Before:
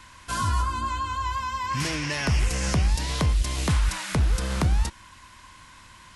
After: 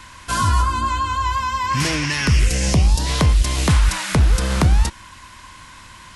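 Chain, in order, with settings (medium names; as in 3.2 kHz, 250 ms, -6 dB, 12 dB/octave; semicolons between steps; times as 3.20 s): 2.05–3.05 s: peaking EQ 490 Hz -> 2.3 kHz -14 dB 0.62 oct; trim +7.5 dB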